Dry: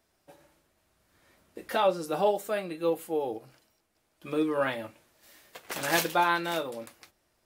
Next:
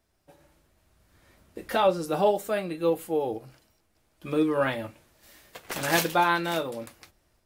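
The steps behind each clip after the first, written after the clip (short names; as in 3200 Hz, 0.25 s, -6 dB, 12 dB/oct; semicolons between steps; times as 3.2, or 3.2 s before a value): AGC gain up to 5 dB; low shelf 130 Hz +11.5 dB; gain -3 dB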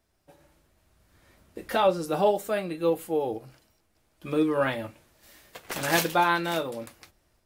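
nothing audible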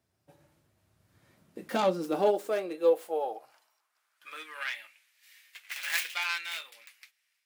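tracing distortion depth 0.37 ms; high-pass sweep 110 Hz -> 2200 Hz, 1.09–4.71; gain -5.5 dB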